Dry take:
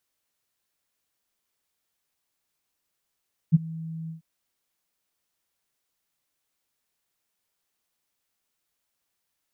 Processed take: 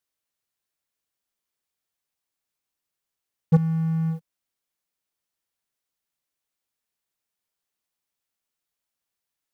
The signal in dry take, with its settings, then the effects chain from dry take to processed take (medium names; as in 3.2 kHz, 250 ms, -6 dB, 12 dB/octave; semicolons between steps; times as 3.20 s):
ADSR sine 162 Hz, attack 28 ms, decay 23 ms, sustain -22 dB, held 0.57 s, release 122 ms -10 dBFS
waveshaping leveller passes 3